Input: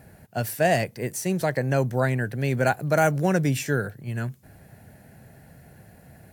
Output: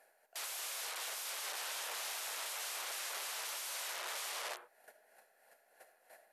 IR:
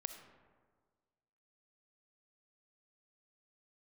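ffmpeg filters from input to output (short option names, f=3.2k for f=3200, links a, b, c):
-filter_complex "[0:a]alimiter=limit=-17dB:level=0:latency=1:release=142,aeval=exprs='(mod(20*val(0)+1,2)-1)/20':c=same,asettb=1/sr,asplit=3[a][b][c];[a]atrim=end=1.784[d];[b]atrim=start=1.78:end=3.87,asetpts=PTS-STARTPTS,afade=t=in:d=0.004:c=qsin,afade=t=out:st=2.086:d=0.004:c=qsin,acrossover=split=3000[e][f];[f]adelay=40[g];[e][g]amix=inputs=2:normalize=0,atrim=end_sample=92169[h];[c]atrim=start=3.866[i];[d][h]acrossfade=d=0.004:c1=hsin:c2=qsin[j];[j][i]acrossfade=d=0.004:c1=qsin:c2=hsin,tremolo=f=3.1:d=0.59,agate=range=-14dB:threshold=-47dB:ratio=16:detection=peak[k];[1:a]atrim=start_sample=2205,afade=t=out:st=0.44:d=0.01,atrim=end_sample=19845[l];[k][l]afir=irnorm=-1:irlink=0,acompressor=threshold=-35dB:ratio=16,aeval=exprs='(mod(150*val(0)+1,2)-1)/150':c=same,highpass=f=530:w=0.5412,highpass=f=530:w=1.3066,volume=7.5dB" -ar 48000 -c:a mp2 -b:a 128k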